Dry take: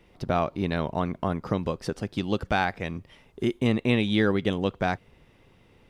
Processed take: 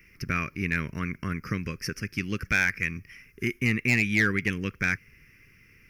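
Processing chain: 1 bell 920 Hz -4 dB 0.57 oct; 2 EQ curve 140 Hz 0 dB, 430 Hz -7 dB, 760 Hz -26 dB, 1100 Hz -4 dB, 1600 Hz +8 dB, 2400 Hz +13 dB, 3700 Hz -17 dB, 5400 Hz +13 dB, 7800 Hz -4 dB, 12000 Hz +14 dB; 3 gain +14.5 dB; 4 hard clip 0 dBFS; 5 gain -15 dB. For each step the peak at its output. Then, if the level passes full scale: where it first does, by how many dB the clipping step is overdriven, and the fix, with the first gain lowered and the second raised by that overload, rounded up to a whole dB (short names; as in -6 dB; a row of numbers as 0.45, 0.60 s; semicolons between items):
-11.0, -7.5, +7.0, 0.0, -15.0 dBFS; step 3, 7.0 dB; step 3 +7.5 dB, step 5 -8 dB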